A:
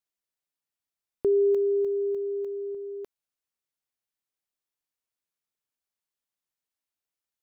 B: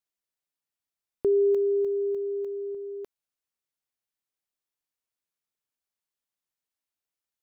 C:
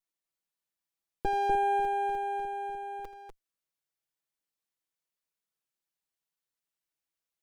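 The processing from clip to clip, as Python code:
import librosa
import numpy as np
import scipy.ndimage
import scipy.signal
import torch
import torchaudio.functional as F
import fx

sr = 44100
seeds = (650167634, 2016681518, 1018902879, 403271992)

y1 = x
y2 = fx.lower_of_two(y1, sr, delay_ms=6.1)
y2 = fx.echo_multitap(y2, sr, ms=(82, 247), db=(-15.5, -4.5))
y2 = y2 * librosa.db_to_amplitude(-1.0)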